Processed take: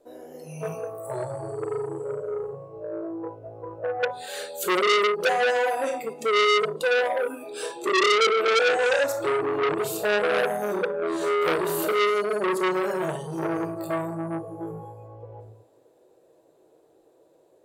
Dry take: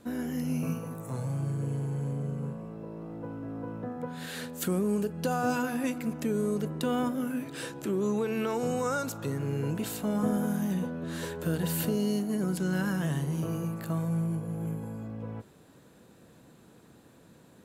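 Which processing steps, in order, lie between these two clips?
in parallel at +1.5 dB: peak limiter -25 dBFS, peak gain reduction 8.5 dB; on the sum: resonant low shelf 290 Hz -6 dB, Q 3; on a send at -2.5 dB: reverberation RT60 1.0 s, pre-delay 6 ms; on the sum: spectral noise reduction 16 dB; FFT filter 210 Hz 0 dB, 600 Hz +15 dB, 1.4 kHz -2 dB, 7.3 kHz +3 dB; transformer saturation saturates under 3.1 kHz; trim -4.5 dB

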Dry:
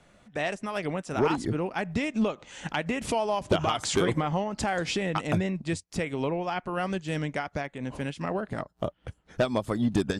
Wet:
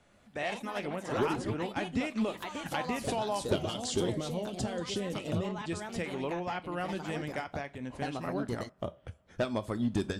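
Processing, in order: time-frequency box 3.55–5.71 s, 650–2700 Hz -10 dB; two-slope reverb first 0.24 s, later 2.4 s, from -28 dB, DRR 10 dB; ever faster or slower copies 118 ms, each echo +3 st, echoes 2, each echo -6 dB; trim -6 dB

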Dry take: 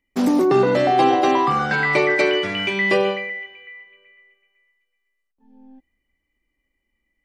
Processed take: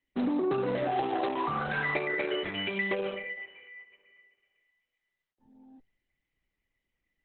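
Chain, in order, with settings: compression 10:1, threshold -18 dBFS, peak gain reduction 7 dB; trim -7 dB; Opus 8 kbps 48 kHz

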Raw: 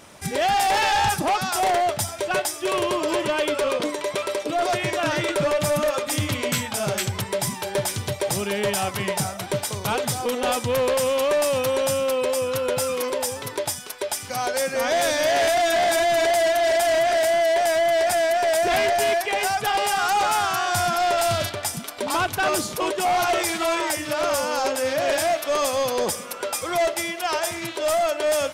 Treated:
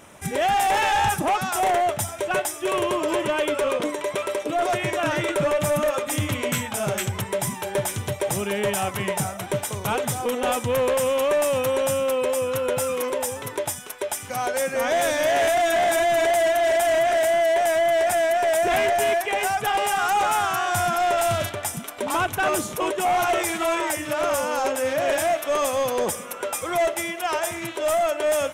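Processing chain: peaking EQ 4.6 kHz -11.5 dB 0.5 oct

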